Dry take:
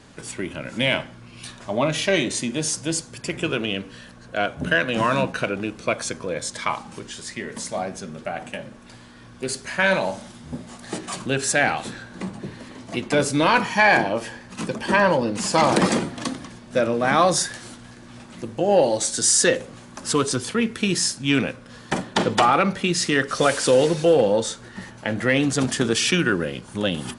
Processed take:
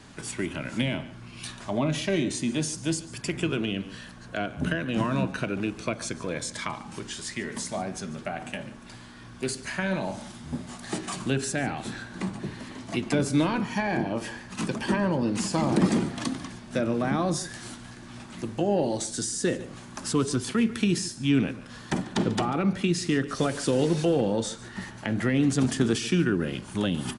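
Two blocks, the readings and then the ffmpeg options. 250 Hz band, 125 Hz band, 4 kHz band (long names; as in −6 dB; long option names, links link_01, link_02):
−1.0 dB, 0.0 dB, −8.0 dB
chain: -filter_complex "[0:a]equalizer=frequency=510:width=3.7:gain=-7,acrossover=split=460[link_01][link_02];[link_02]acompressor=threshold=-31dB:ratio=6[link_03];[link_01][link_03]amix=inputs=2:normalize=0,aecho=1:1:144:0.126"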